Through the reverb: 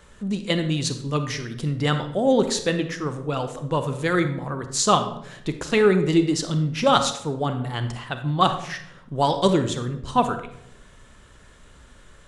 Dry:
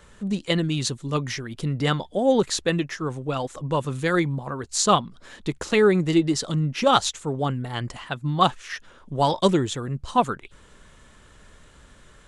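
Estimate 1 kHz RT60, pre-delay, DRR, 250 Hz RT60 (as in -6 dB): 0.65 s, 27 ms, 8.0 dB, 0.95 s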